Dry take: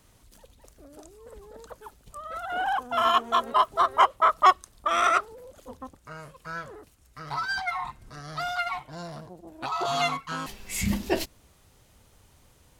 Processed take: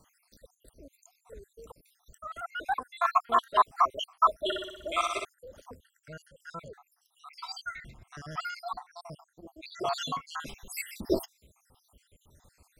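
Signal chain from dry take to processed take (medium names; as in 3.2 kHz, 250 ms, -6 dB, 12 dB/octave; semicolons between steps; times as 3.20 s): random holes in the spectrogram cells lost 71%; 4.42–5.25 s: flutter echo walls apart 10.5 m, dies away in 0.91 s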